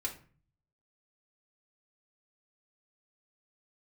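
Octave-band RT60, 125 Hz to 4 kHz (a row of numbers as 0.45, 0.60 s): 0.90, 0.60, 0.45, 0.40, 0.40, 0.30 s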